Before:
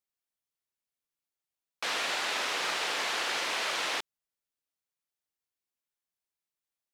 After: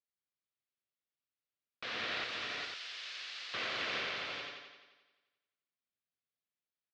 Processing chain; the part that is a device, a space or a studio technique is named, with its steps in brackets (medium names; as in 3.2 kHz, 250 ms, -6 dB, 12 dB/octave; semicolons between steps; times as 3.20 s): analogue delay pedal into a guitar amplifier (bucket-brigade echo 87 ms, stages 4096, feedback 61%, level -3 dB; valve stage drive 22 dB, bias 0.75; cabinet simulation 83–4400 Hz, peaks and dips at 110 Hz +6 dB, 220 Hz +4 dB, 880 Hz -10 dB); 2.24–3.54 s: differentiator; multi-tap echo 210/408/502 ms -7.5/-4.5/-9 dB; trim -3.5 dB